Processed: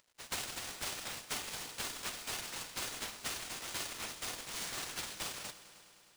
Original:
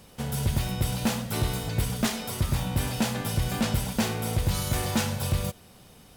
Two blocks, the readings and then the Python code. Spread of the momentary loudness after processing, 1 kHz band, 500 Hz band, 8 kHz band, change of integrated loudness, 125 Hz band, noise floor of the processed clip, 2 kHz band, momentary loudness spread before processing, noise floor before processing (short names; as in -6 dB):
3 LU, -11.5 dB, -16.0 dB, -5.5 dB, -11.5 dB, -30.5 dB, -64 dBFS, -7.0 dB, 2 LU, -53 dBFS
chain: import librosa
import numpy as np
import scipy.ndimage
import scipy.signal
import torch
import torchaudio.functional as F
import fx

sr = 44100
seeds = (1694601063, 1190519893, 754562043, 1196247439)

p1 = scipy.signal.sosfilt(scipy.signal.butter(4, 110.0, 'highpass', fs=sr, output='sos'), x)
p2 = np.diff(p1, prepend=0.0)
p3 = fx.spec_gate(p2, sr, threshold_db=-10, keep='weak')
p4 = fx.rider(p3, sr, range_db=10, speed_s=0.5)
p5 = fx.sample_hold(p4, sr, seeds[0], rate_hz=16000.0, jitter_pct=0)
p6 = np.sign(p5) * np.maximum(np.abs(p5) - 10.0 ** (-57.0 / 20.0), 0.0)
p7 = p6 + fx.echo_heads(p6, sr, ms=103, heads='all three', feedback_pct=63, wet_db=-21, dry=0)
y = p7 * 10.0 ** (1.0 / 20.0)